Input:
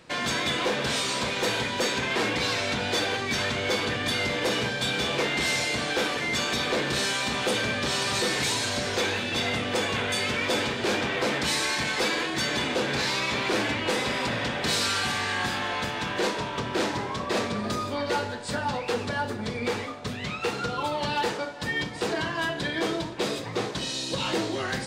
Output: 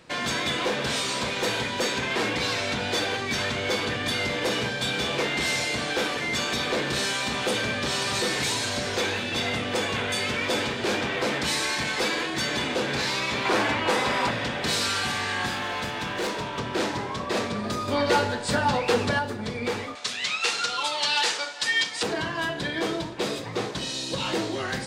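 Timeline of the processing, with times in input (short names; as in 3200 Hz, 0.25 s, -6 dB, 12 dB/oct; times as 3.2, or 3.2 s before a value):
13.45–14.31 bell 1000 Hz +7 dB 1.5 oct
15.54–16.59 hard clip -25 dBFS
17.88–19.19 gain +5.5 dB
19.95–22.03 weighting filter ITU-R 468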